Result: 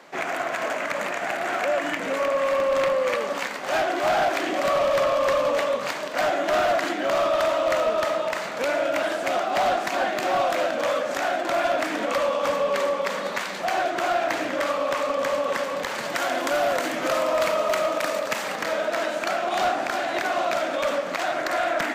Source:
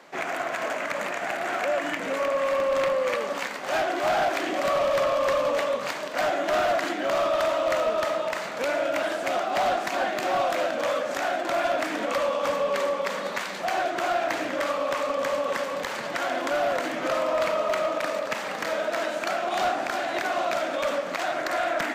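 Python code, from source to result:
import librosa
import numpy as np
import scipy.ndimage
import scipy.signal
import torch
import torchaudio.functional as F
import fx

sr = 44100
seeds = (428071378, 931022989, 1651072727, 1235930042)

y = fx.high_shelf(x, sr, hz=6100.0, db=8.5, at=(15.98, 18.55))
y = y * librosa.db_to_amplitude(2.0)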